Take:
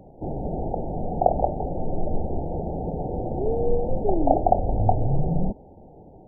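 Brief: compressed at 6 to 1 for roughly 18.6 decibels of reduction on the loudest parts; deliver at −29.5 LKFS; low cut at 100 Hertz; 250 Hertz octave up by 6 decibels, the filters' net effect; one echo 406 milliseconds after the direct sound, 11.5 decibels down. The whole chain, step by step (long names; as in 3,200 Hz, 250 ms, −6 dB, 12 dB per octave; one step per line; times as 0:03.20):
high-pass filter 100 Hz
parametric band 250 Hz +8.5 dB
downward compressor 6 to 1, threshold −33 dBFS
single-tap delay 406 ms −11.5 dB
level +7 dB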